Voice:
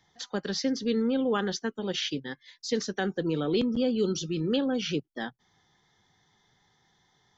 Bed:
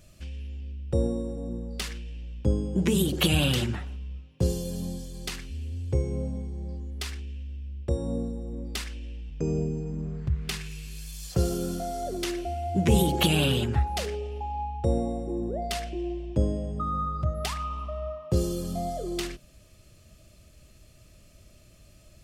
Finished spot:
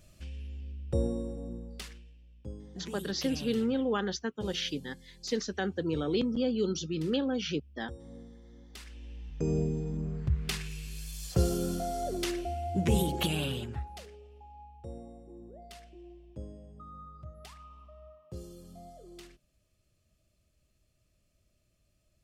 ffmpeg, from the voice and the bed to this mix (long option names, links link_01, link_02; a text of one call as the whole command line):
ffmpeg -i stem1.wav -i stem2.wav -filter_complex "[0:a]adelay=2600,volume=-3dB[link_01];[1:a]volume=12.5dB,afade=type=out:start_time=1.24:duration=0.93:silence=0.199526,afade=type=in:start_time=8.7:duration=0.84:silence=0.149624,afade=type=out:start_time=12.1:duration=1.99:silence=0.141254[link_02];[link_01][link_02]amix=inputs=2:normalize=0" out.wav